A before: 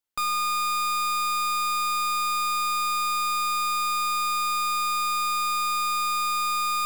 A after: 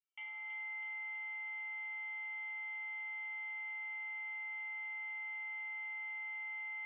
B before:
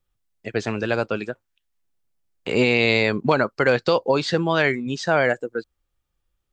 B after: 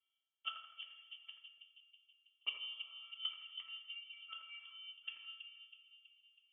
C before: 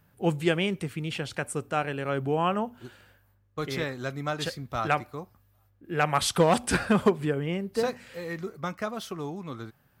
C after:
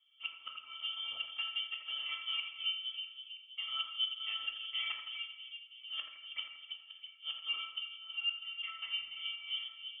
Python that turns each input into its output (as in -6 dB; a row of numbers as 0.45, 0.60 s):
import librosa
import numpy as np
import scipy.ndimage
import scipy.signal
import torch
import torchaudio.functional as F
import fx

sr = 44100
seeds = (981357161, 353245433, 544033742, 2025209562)

y = fx.block_float(x, sr, bits=3)
y = scipy.signal.sosfilt(scipy.signal.butter(2, 41.0, 'highpass', fs=sr, output='sos'), y)
y = fx.env_lowpass_down(y, sr, base_hz=2500.0, full_db=-15.0)
y = fx.peak_eq(y, sr, hz=110.0, db=-13.5, octaves=0.27)
y = fx.octave_resonator(y, sr, note='B', decay_s=0.27)
y = fx.gate_flip(y, sr, shuts_db=-36.0, range_db=-33)
y = fx.echo_split(y, sr, split_hz=880.0, low_ms=324, high_ms=82, feedback_pct=52, wet_db=-8)
y = fx.rev_double_slope(y, sr, seeds[0], early_s=0.57, late_s=1.8, knee_db=-18, drr_db=2.5)
y = fx.freq_invert(y, sr, carrier_hz=3300)
y = y * librosa.db_to_amplitude(8.0)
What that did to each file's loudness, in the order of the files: -17.0, -25.5, -9.5 LU